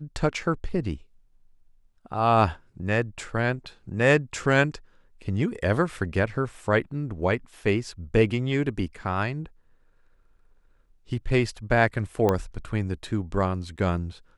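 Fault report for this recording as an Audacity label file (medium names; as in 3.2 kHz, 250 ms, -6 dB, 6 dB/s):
12.290000	12.290000	pop -11 dBFS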